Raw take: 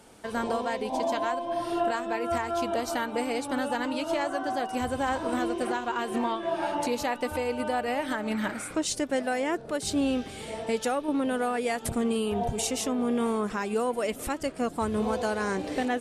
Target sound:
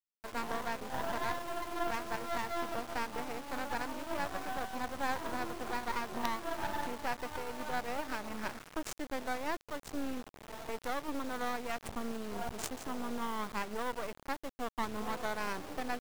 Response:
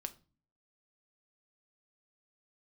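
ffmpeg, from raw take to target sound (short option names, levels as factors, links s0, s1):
-af "equalizer=f=125:t=o:w=1:g=-12,equalizer=f=500:t=o:w=1:g=-6,equalizer=f=1000:t=o:w=1:g=6,equalizer=f=4000:t=o:w=1:g=-8,equalizer=f=8000:t=o:w=1:g=9,adynamicsmooth=sensitivity=4:basefreq=580,acrusher=bits=4:dc=4:mix=0:aa=0.000001,volume=0.631"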